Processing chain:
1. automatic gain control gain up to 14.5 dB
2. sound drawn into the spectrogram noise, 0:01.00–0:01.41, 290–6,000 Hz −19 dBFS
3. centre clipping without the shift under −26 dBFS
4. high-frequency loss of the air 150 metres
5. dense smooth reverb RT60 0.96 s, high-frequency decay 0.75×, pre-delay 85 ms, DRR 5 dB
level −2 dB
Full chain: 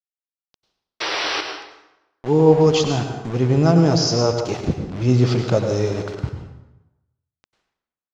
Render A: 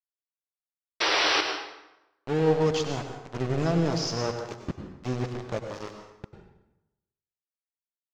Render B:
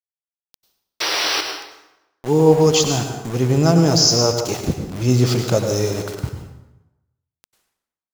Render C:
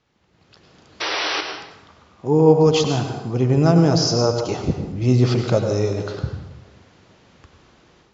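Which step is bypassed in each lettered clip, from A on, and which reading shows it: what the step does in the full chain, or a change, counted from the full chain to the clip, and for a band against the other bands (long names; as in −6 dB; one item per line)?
1, 2 kHz band +8.5 dB
4, 4 kHz band +5.0 dB
3, distortion level −19 dB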